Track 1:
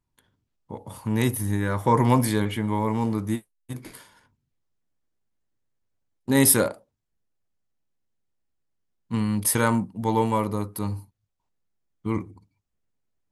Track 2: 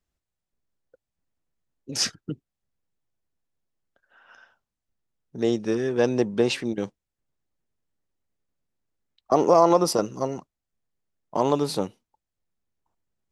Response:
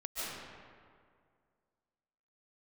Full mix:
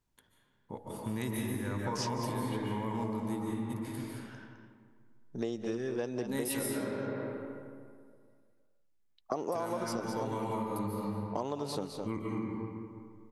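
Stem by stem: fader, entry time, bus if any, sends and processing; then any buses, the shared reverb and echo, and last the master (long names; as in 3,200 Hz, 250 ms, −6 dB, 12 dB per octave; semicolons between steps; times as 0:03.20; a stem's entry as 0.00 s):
−3.0 dB, 0.00 s, muted 0:07.67–0:09.52, send −3 dB, no echo send, parametric band 80 Hz −5.5 dB 0.91 octaves; automatic ducking −12 dB, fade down 1.00 s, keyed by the second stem
−4.0 dB, 0.00 s, send −17.5 dB, echo send −9 dB, no processing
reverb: on, RT60 2.1 s, pre-delay 105 ms
echo: single-tap delay 209 ms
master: downward compressor 10 to 1, threshold −31 dBFS, peak gain reduction 16.5 dB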